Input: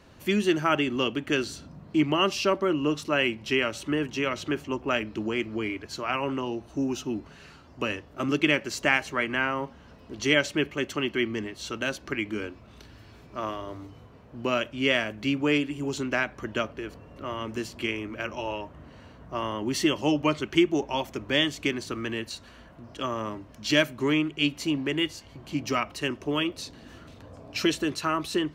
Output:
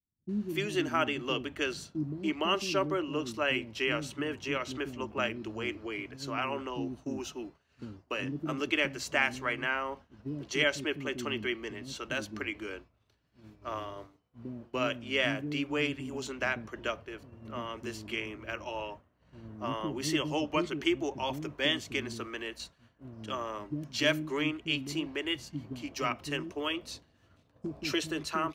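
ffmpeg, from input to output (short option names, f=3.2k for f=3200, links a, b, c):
-filter_complex "[0:a]acrossover=split=290[a][b];[b]adelay=290[c];[a][c]amix=inputs=2:normalize=0,agate=range=-33dB:threshold=-37dB:ratio=3:detection=peak,volume=-4.5dB"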